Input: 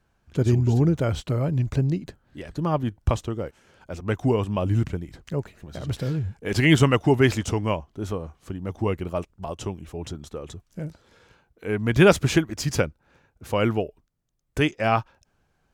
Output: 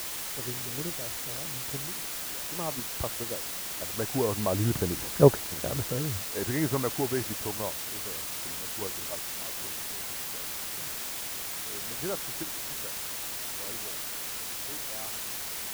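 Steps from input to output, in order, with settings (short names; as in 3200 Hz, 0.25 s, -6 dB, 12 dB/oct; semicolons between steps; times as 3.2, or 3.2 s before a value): Doppler pass-by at 5.17, 8 m/s, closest 1.5 m; steep low-pass 1900 Hz 36 dB/oct; bell 620 Hz +9 dB 2.6 oct; in parallel at +2.5 dB: level quantiser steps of 21 dB; on the sum: requantised 6-bit, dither triangular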